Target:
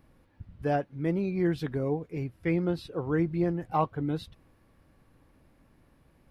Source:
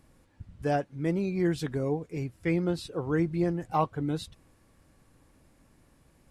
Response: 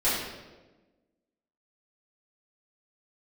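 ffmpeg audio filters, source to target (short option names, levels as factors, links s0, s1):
-af "equalizer=f=7600:w=1.1:g=-13.5"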